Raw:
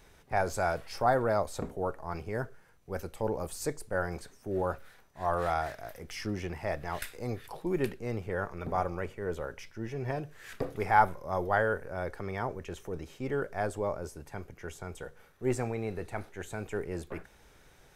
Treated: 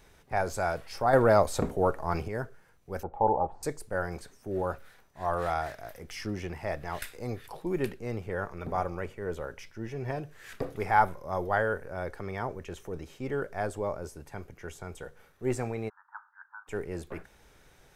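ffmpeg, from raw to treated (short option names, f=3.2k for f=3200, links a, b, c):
-filter_complex "[0:a]asettb=1/sr,asplit=3[a][b][c];[a]atrim=end=1.134[d];[b]atrim=start=1.13:end=2.28,asetpts=PTS-STARTPTS,afade=t=in:d=0.004:c=qsin,afade=t=out:st=1.146:d=0.004:c=qsin,acontrast=87[e];[c]atrim=start=2.276[f];[d][e]acrossfade=d=0.004:c1=hsin:c2=qsin[g];[g][f]acrossfade=d=0.004:c1=qsin:c2=hsin,asettb=1/sr,asplit=3[h][i][j];[h]atrim=end=3.034[k];[i]atrim=start=3.03:end=3.63,asetpts=PTS-STARTPTS,afade=t=in:d=0.004:c=qsin,afade=t=out:st=0.596:d=0.004:c=qsin,lowpass=f=830:t=q:w=9[l];[j]atrim=start=3.626[m];[k][l]acrossfade=d=0.004:c1=hsin:c2=qsin[n];[n][m]acrossfade=d=0.004:c1=qsin:c2=hsin,asplit=3[o][p][q];[o]afade=t=out:st=15.88:d=0.02[r];[p]asuperpass=centerf=1200:order=12:qfactor=1.6,afade=t=in:st=15.88:d=0.02,afade=t=out:st=16.67:d=0.02[s];[q]afade=t=in:st=16.67:d=0.02[t];[r][s][t]amix=inputs=3:normalize=0"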